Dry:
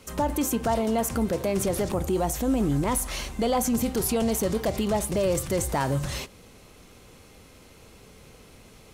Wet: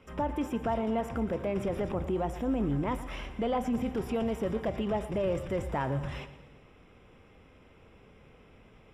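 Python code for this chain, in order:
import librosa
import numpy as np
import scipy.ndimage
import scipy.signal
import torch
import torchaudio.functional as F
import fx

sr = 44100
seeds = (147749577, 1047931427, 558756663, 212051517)

p1 = scipy.signal.savgol_filter(x, 25, 4, mode='constant')
p2 = p1 + fx.echo_feedback(p1, sr, ms=117, feedback_pct=54, wet_db=-14.5, dry=0)
y = F.gain(torch.from_numpy(p2), -5.5).numpy()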